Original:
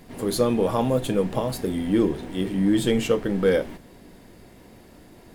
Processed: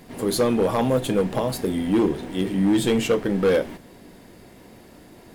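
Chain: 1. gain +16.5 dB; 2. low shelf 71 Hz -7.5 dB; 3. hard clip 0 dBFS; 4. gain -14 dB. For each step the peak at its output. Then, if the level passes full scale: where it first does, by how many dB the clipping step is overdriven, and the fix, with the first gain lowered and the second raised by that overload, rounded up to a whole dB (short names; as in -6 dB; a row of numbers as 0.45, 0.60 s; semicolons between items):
+7.5, +7.0, 0.0, -14.0 dBFS; step 1, 7.0 dB; step 1 +9.5 dB, step 4 -7 dB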